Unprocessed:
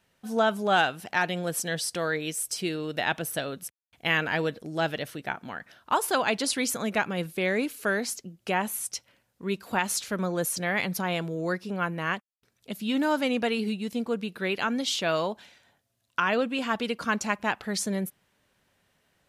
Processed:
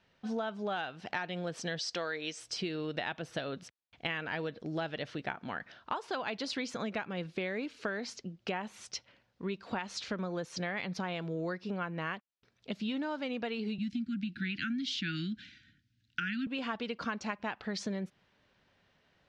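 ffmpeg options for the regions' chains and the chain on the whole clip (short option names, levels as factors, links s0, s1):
-filter_complex "[0:a]asettb=1/sr,asplit=3[s0][s1][s2];[s0]atrim=end=1.794[s3];[s1]atrim=start=1.79:end=2.4,asetpts=PTS-STARTPTS,afade=t=in:d=0.004:c=qsin,afade=t=out:st=0.606:d=0.004:c=qsin,lowpass=f=6900:t=q:w=1.8,equalizer=f=85:w=0.5:g=-12.5[s4];[s2]atrim=start=2.396[s5];[s3][s4]acrossfade=d=0.004:c1=hsin:c2=qsin[s6];[s6][s5]acrossfade=d=0.004:c1=qsin:c2=hsin,asettb=1/sr,asplit=3[s7][s8][s9];[s7]atrim=end=13.784[s10];[s8]atrim=start=13.78:end=16.47,asetpts=PTS-STARTPTS,afade=t=in:d=0.004:c=qsin,afade=t=out:st=2.686:d=0.004:c=qsin,asuperstop=centerf=680:order=20:qfactor=0.63,lowshelf=f=390:g=7[s11];[s9]atrim=start=16.466[s12];[s10][s11]acrossfade=d=0.004:c1=hsin:c2=qsin[s13];[s13][s12]acrossfade=d=0.004:c1=qsin:c2=hsin,lowpass=f=5200:w=0.5412,lowpass=f=5200:w=1.3066,acompressor=threshold=0.0251:ratio=12"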